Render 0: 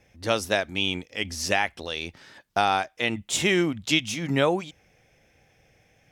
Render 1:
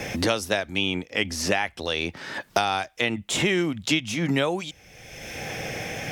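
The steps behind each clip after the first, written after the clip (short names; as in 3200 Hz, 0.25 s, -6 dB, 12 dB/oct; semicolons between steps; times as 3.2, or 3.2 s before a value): three-band squash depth 100%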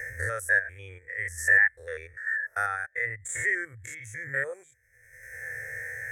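stepped spectrum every 0.1 s; EQ curve 120 Hz 0 dB, 180 Hz -25 dB, 300 Hz -20 dB, 490 Hz 0 dB, 700 Hz -10 dB, 1000 Hz -8 dB, 1800 Hz +14 dB, 2800 Hz -18 dB, 4900 Hz -10 dB, 7900 Hz +12 dB; spectral expander 1.5:1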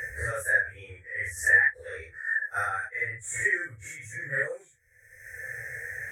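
phase scrambler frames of 0.1 s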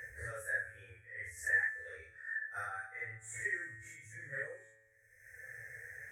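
resonator 110 Hz, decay 1.3 s, harmonics all, mix 70%; gain -3 dB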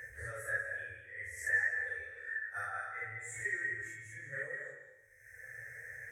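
reverb RT60 0.90 s, pre-delay 0.115 s, DRR 3 dB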